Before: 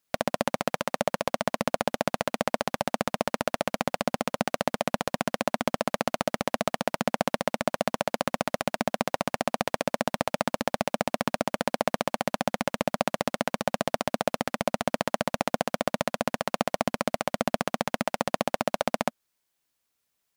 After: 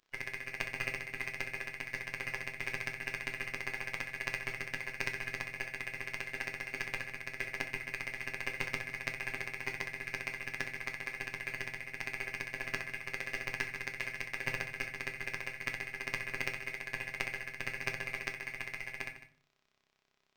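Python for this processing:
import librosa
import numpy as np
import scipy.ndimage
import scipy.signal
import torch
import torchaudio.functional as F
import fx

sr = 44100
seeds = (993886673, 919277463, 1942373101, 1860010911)

p1 = fx.band_shuffle(x, sr, order='2143')
p2 = fx.over_compress(p1, sr, threshold_db=-30.0, ratio=-0.5)
p3 = fx.robotise(p2, sr, hz=131.0)
p4 = p3 + fx.echo_single(p3, sr, ms=150, db=-13.0, dry=0)
p5 = fx.room_shoebox(p4, sr, seeds[0], volume_m3=39.0, walls='mixed', distance_m=0.36)
p6 = np.interp(np.arange(len(p5)), np.arange(len(p5))[::4], p5[::4])
y = p6 * librosa.db_to_amplitude(-3.5)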